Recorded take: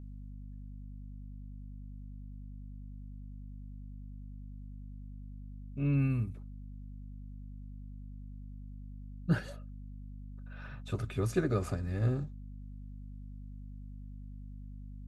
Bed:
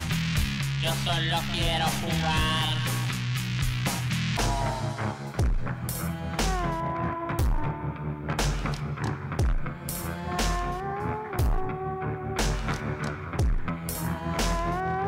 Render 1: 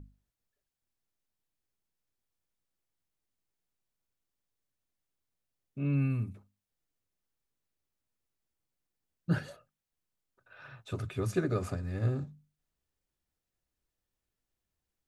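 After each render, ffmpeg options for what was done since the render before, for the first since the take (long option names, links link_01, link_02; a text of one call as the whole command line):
ffmpeg -i in.wav -af "bandreject=frequency=50:width_type=h:width=6,bandreject=frequency=100:width_type=h:width=6,bandreject=frequency=150:width_type=h:width=6,bandreject=frequency=200:width_type=h:width=6,bandreject=frequency=250:width_type=h:width=6" out.wav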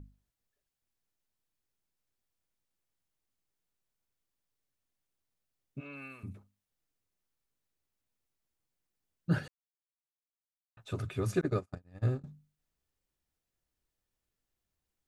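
ffmpeg -i in.wav -filter_complex "[0:a]asplit=3[link_01][link_02][link_03];[link_01]afade=type=out:start_time=5.79:duration=0.02[link_04];[link_02]highpass=720,afade=type=in:start_time=5.79:duration=0.02,afade=type=out:start_time=6.23:duration=0.02[link_05];[link_03]afade=type=in:start_time=6.23:duration=0.02[link_06];[link_04][link_05][link_06]amix=inputs=3:normalize=0,asettb=1/sr,asplit=3[link_07][link_08][link_09];[link_07]atrim=end=11.414[link_10];[link_08]atrim=start=11.41:end=12.24,asetpts=PTS-STARTPTS,afade=type=in:duration=0.004:curve=qsin,afade=type=out:start_time=0.826:duration=0.004:curve=qsin,agate=range=-43dB:threshold=-33dB:ratio=16:release=100:detection=peak[link_11];[link_09]atrim=start=12.236[link_12];[link_10][link_11]acrossfade=duration=0.004:curve1=hsin:curve2=qsin[link_13];[link_13][link_12]acrossfade=duration=0.004:curve1=qsin:curve2=hsin,asplit=3[link_14][link_15][link_16];[link_14]atrim=end=9.48,asetpts=PTS-STARTPTS,afade=type=out:start_time=9.476:duration=0.004:curve=hsin[link_17];[link_15]atrim=start=9.48:end=10.77,asetpts=PTS-STARTPTS,volume=0[link_18];[link_16]atrim=start=10.77,asetpts=PTS-STARTPTS,afade=type=in:duration=0.004:curve=hsin[link_19];[link_17][link_18][link_19]concat=n=3:v=0:a=1" out.wav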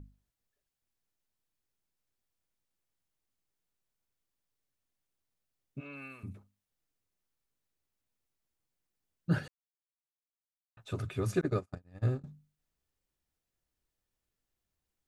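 ffmpeg -i in.wav -af anull out.wav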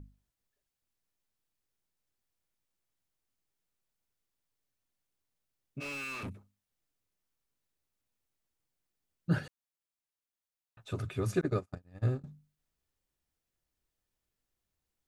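ffmpeg -i in.wav -filter_complex "[0:a]asplit=3[link_01][link_02][link_03];[link_01]afade=type=out:start_time=5.8:duration=0.02[link_04];[link_02]asplit=2[link_05][link_06];[link_06]highpass=frequency=720:poles=1,volume=33dB,asoftclip=type=tanh:threshold=-32.5dB[link_07];[link_05][link_07]amix=inputs=2:normalize=0,lowpass=frequency=3600:poles=1,volume=-6dB,afade=type=in:start_time=5.8:duration=0.02,afade=type=out:start_time=6.28:duration=0.02[link_08];[link_03]afade=type=in:start_time=6.28:duration=0.02[link_09];[link_04][link_08][link_09]amix=inputs=3:normalize=0" out.wav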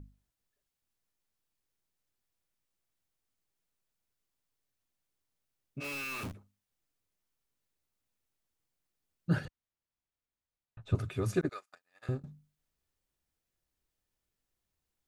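ffmpeg -i in.wav -filter_complex "[0:a]asettb=1/sr,asplit=3[link_01][link_02][link_03];[link_01]atrim=end=5.844[link_04];[link_02]atrim=start=5.84:end=6.34,asetpts=PTS-STARTPTS,afade=type=in:duration=0.004:curve=qsin,afade=type=out:start_time=0.496:duration=0.004:curve=qsin,acrusher=bits=8:dc=4:mix=0:aa=0.000001[link_05];[link_03]atrim=start=6.336[link_06];[link_04][link_05]acrossfade=duration=0.004:curve1=hsin:curve2=qsin[link_07];[link_07][link_06]acrossfade=duration=0.004:curve1=qsin:curve2=hsin,asettb=1/sr,asplit=3[link_08][link_09][link_10];[link_08]atrim=end=9.454[link_11];[link_09]atrim=start=9.45:end=10.95,asetpts=PTS-STARTPTS,afade=type=in:duration=0.004:curve=qsin,afade=type=out:start_time=1.496:duration=0.004:curve=qsin,aemphasis=mode=reproduction:type=bsi[link_12];[link_10]atrim=start=10.946[link_13];[link_11][link_12]acrossfade=duration=0.004:curve1=hsin:curve2=qsin[link_14];[link_14][link_13]acrossfade=duration=0.004:curve1=qsin:curve2=hsin,asettb=1/sr,asplit=3[link_15][link_16][link_17];[link_15]atrim=end=11.494[link_18];[link_16]atrim=start=11.49:end=12.09,asetpts=PTS-STARTPTS,afade=type=in:duration=0.004:curve=qsin,afade=type=out:start_time=0.596:duration=0.004:curve=qsin,highpass=1300[link_19];[link_17]atrim=start=12.086[link_20];[link_18][link_19]acrossfade=duration=0.004:curve1=hsin:curve2=qsin[link_21];[link_21][link_20]acrossfade=duration=0.004:curve1=qsin:curve2=hsin" out.wav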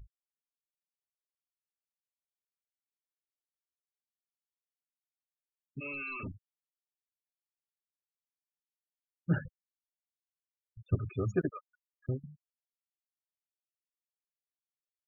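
ffmpeg -i in.wav -af "afftfilt=real='re*gte(hypot(re,im),0.0178)':imag='im*gte(hypot(re,im),0.0178)':win_size=1024:overlap=0.75" out.wav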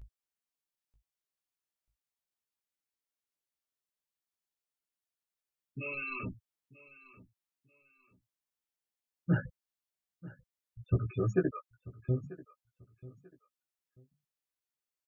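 ffmpeg -i in.wav -filter_complex "[0:a]asplit=2[link_01][link_02];[link_02]adelay=16,volume=-4dB[link_03];[link_01][link_03]amix=inputs=2:normalize=0,aecho=1:1:939|1878:0.112|0.0303" out.wav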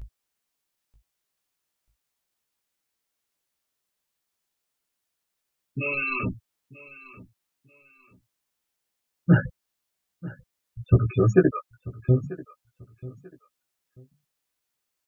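ffmpeg -i in.wav -af "volume=11dB" out.wav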